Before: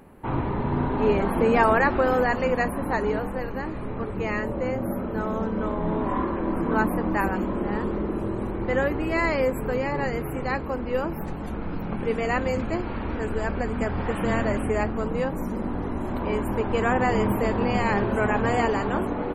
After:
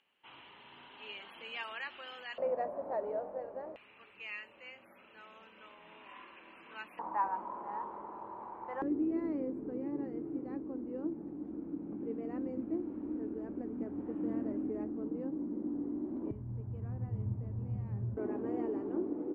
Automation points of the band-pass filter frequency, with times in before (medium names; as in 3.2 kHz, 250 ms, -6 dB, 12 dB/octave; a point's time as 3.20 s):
band-pass filter, Q 6.9
3 kHz
from 2.38 s 610 Hz
from 3.76 s 2.7 kHz
from 6.99 s 930 Hz
from 8.82 s 300 Hz
from 16.31 s 110 Hz
from 18.17 s 330 Hz